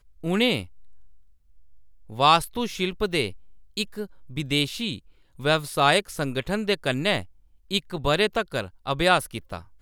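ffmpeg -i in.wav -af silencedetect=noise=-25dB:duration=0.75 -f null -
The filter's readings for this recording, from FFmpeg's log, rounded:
silence_start: 0.61
silence_end: 2.19 | silence_duration: 1.58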